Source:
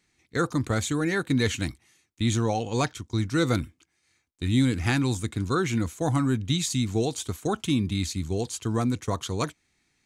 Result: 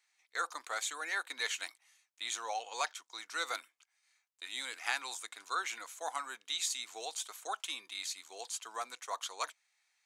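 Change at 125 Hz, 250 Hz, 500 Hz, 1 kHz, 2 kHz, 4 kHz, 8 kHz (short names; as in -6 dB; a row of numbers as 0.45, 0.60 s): under -40 dB, -36.5 dB, -18.0 dB, -6.0 dB, -5.0 dB, -5.0 dB, -5.0 dB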